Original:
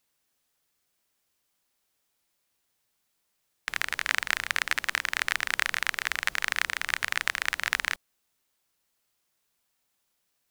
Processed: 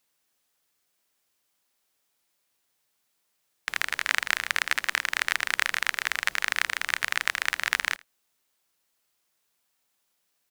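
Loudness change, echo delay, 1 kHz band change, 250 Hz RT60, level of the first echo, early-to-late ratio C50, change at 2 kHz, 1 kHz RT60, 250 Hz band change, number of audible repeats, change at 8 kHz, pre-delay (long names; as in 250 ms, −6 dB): +1.5 dB, 80 ms, +1.5 dB, no reverb audible, −24.0 dB, no reverb audible, +1.5 dB, no reverb audible, −0.5 dB, 1, +1.5 dB, no reverb audible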